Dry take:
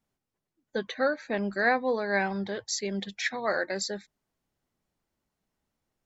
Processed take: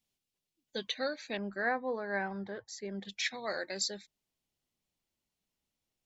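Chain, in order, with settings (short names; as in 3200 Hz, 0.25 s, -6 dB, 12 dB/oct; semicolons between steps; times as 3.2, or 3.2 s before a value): resonant high shelf 2100 Hz +10 dB, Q 1.5, from 1.37 s -6 dB, from 3.05 s +7 dB; gain -8 dB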